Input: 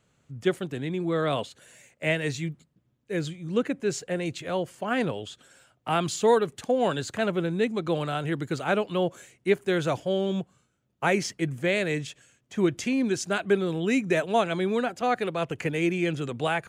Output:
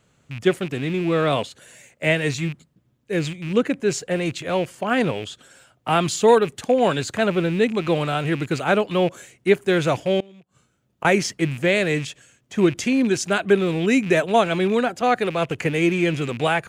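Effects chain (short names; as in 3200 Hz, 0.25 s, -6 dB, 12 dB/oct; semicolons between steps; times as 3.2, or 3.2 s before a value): rattling part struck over -37 dBFS, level -32 dBFS; 10.2–11.05 flipped gate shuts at -24 dBFS, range -25 dB; gain +6 dB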